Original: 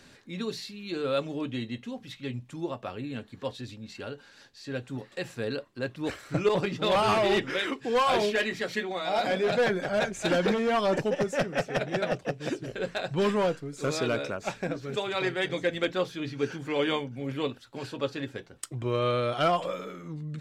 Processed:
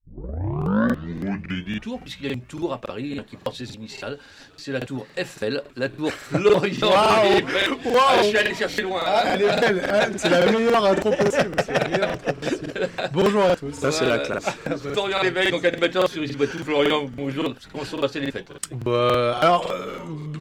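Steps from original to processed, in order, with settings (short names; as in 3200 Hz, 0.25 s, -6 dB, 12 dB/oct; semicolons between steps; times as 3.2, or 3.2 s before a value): tape start at the beginning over 2.00 s; HPF 160 Hz 6 dB/oct; on a send: frequency-shifting echo 0.477 s, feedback 53%, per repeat -130 Hz, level -23 dB; on the sum: crackling interface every 0.28 s, samples 2048, repeat, from 0.57; gain +8 dB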